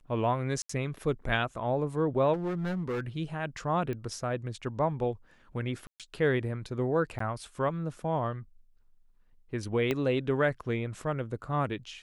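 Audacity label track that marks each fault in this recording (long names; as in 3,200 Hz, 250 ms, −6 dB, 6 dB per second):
0.620000	0.690000	drop-out 74 ms
2.330000	3.080000	clipping −28.5 dBFS
3.930000	3.930000	click −25 dBFS
5.870000	6.000000	drop-out 127 ms
7.190000	7.200000	drop-out 14 ms
9.910000	9.910000	click −16 dBFS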